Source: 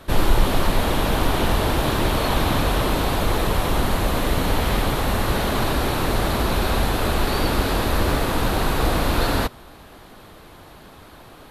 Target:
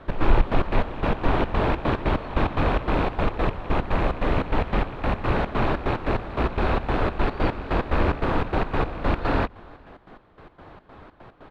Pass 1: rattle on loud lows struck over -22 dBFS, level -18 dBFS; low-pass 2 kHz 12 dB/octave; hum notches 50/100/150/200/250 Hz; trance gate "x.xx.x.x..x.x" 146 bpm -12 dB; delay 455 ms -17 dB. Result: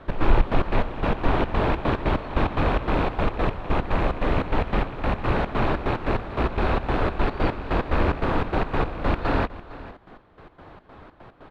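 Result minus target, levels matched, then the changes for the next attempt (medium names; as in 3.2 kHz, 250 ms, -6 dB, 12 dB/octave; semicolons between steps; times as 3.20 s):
echo-to-direct +11.5 dB
change: delay 455 ms -28.5 dB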